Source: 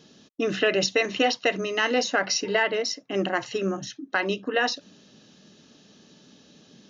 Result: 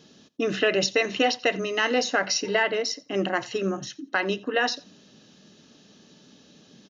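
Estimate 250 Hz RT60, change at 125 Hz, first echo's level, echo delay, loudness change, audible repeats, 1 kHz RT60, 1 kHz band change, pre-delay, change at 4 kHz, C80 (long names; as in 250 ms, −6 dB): no reverb audible, 0.0 dB, −22.5 dB, 87 ms, 0.0 dB, 1, no reverb audible, 0.0 dB, no reverb audible, 0.0 dB, no reverb audible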